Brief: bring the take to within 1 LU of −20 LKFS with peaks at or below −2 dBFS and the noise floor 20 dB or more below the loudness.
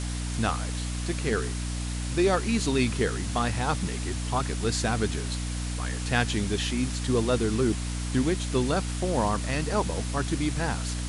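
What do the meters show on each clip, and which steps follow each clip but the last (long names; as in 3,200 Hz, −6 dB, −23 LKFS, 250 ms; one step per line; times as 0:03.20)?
mains hum 60 Hz; hum harmonics up to 300 Hz; level of the hum −29 dBFS; background noise floor −31 dBFS; target noise floor −48 dBFS; integrated loudness −27.5 LKFS; sample peak −11.0 dBFS; target loudness −20.0 LKFS
→ hum removal 60 Hz, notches 5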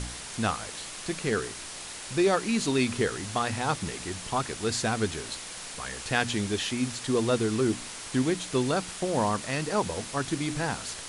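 mains hum none found; background noise floor −40 dBFS; target noise floor −49 dBFS
→ broadband denoise 9 dB, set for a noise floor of −40 dBFS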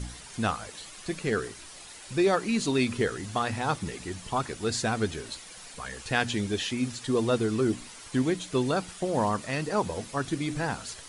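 background noise floor −46 dBFS; target noise floor −50 dBFS
→ broadband denoise 6 dB, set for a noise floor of −46 dBFS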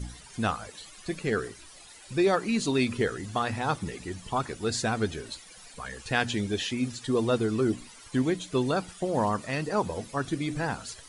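background noise floor −50 dBFS; integrated loudness −29.5 LKFS; sample peak −10.5 dBFS; target loudness −20.0 LKFS
→ level +9.5 dB
brickwall limiter −2 dBFS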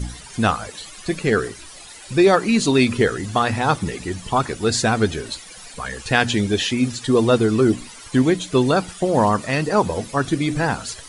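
integrated loudness −20.0 LKFS; sample peak −2.0 dBFS; background noise floor −40 dBFS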